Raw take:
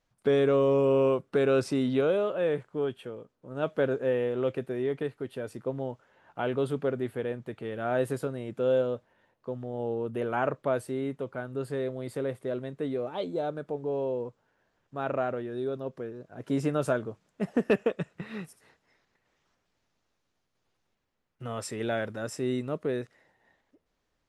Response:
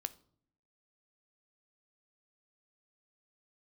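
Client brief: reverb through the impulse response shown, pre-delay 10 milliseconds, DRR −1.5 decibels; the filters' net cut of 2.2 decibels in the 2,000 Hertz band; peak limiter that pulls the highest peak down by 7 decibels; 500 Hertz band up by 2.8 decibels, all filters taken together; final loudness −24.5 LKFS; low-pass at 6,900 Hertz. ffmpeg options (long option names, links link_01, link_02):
-filter_complex "[0:a]lowpass=6900,equalizer=frequency=500:width_type=o:gain=3.5,equalizer=frequency=2000:width_type=o:gain=-3.5,alimiter=limit=-18dB:level=0:latency=1,asplit=2[link_01][link_02];[1:a]atrim=start_sample=2205,adelay=10[link_03];[link_02][link_03]afir=irnorm=-1:irlink=0,volume=3dB[link_04];[link_01][link_04]amix=inputs=2:normalize=0,volume=0.5dB"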